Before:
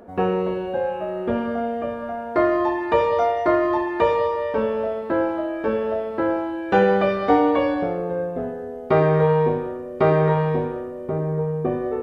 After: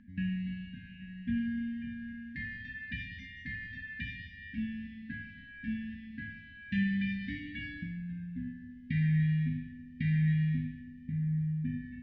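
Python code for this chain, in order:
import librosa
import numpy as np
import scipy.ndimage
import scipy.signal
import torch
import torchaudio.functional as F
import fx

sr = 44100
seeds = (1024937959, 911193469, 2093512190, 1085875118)

y = fx.brickwall_bandstop(x, sr, low_hz=270.0, high_hz=1600.0)
y = fx.air_absorb(y, sr, metres=240.0)
y = F.gain(torch.from_numpy(y), -5.0).numpy()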